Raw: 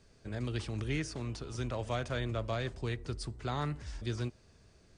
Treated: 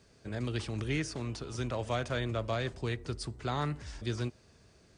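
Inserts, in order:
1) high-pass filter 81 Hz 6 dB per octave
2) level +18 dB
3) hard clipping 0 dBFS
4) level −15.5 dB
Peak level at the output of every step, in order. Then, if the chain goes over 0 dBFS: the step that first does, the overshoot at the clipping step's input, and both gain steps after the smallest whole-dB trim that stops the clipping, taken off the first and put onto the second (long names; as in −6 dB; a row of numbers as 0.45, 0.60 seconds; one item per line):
−23.0, −5.0, −5.0, −20.5 dBFS
no step passes full scale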